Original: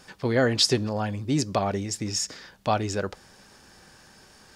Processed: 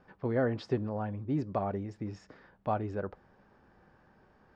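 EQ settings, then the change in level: LPF 1300 Hz 12 dB/oct; -6.5 dB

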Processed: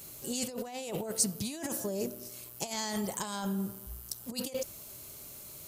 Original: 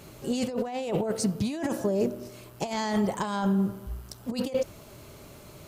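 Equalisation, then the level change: high shelf 3400 Hz +11 dB; high shelf 7300 Hz +12 dB; -9.0 dB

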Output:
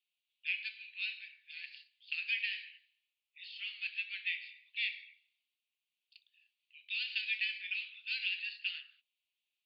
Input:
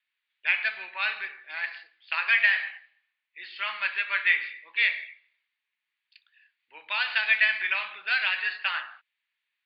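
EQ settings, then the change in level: Chebyshev high-pass 2700 Hz, order 4; dynamic EQ 3300 Hz, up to -4 dB, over -44 dBFS, Q 1.3; -2.5 dB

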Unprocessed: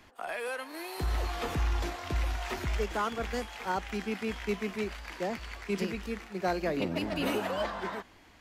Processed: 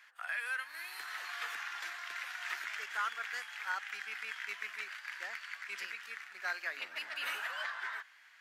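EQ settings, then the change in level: resonant high-pass 1600 Hz, resonance Q 2.9; -5.0 dB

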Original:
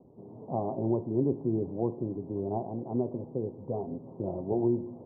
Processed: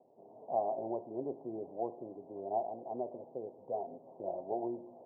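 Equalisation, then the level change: band-pass 690 Hz, Q 3.6; +3.0 dB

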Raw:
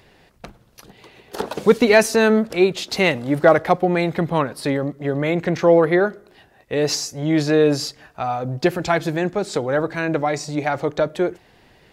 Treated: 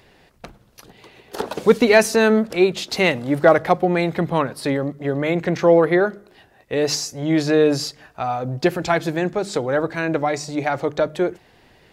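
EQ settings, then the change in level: notches 50/100/150/200 Hz; 0.0 dB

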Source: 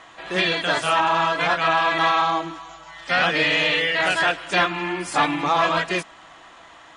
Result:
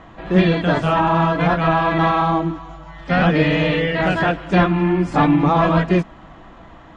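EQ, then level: LPF 8200 Hz 24 dB/oct; tilt -4.5 dB/oct; bell 200 Hz +5.5 dB 0.82 oct; +1.5 dB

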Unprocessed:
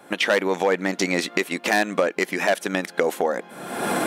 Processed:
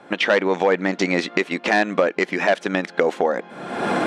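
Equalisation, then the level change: air absorption 120 m; +3.0 dB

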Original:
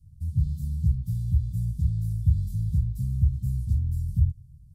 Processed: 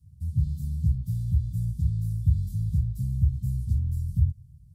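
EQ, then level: HPF 49 Hz; 0.0 dB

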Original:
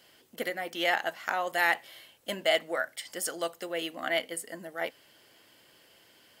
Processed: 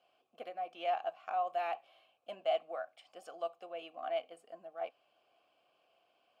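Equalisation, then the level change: vowel filter a; low shelf 200 Hz +10 dB; 0.0 dB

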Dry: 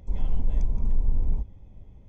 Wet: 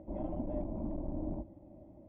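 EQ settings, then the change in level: double band-pass 440 Hz, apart 0.9 oct; air absorption 330 m; +15.0 dB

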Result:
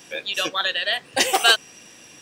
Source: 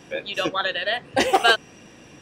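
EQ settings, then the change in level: tilt +2 dB/oct; high shelf 3500 Hz +8 dB; -2.5 dB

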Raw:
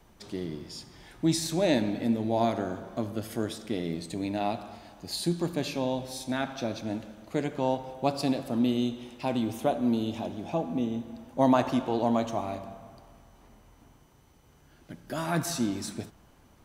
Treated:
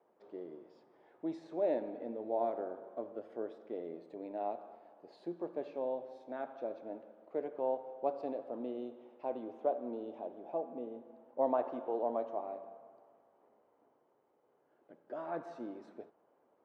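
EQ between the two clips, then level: ladder band-pass 580 Hz, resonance 40%; +3.0 dB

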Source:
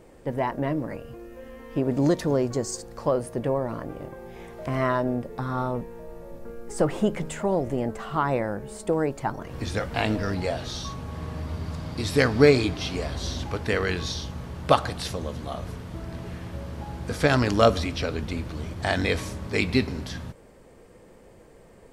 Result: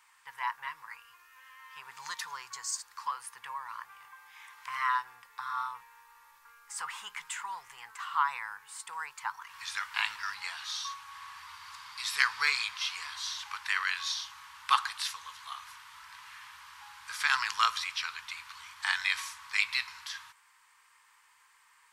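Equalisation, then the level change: elliptic high-pass 980 Hz, stop band 40 dB; 0.0 dB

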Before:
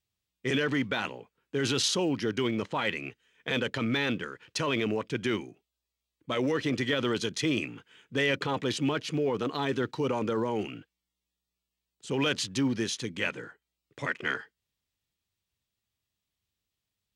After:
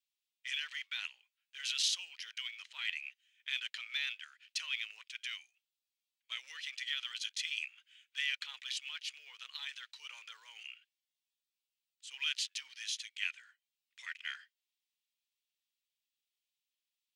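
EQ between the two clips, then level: ladder high-pass 2000 Hz, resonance 30%; +1.0 dB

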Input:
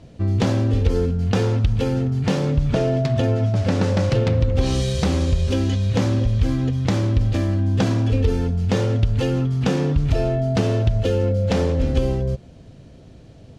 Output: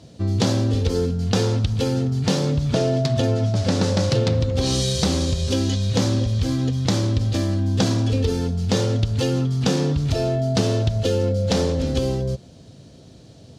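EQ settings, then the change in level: HPF 84 Hz; resonant high shelf 3200 Hz +6.5 dB, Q 1.5; 0.0 dB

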